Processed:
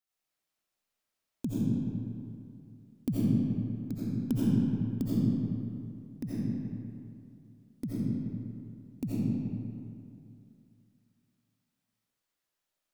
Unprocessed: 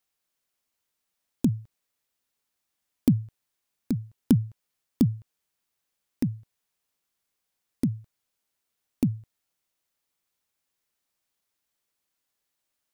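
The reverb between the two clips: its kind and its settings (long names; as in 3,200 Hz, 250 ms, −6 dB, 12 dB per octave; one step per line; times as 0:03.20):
comb and all-pass reverb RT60 2.6 s, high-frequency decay 0.6×, pre-delay 45 ms, DRR −9.5 dB
level −11.5 dB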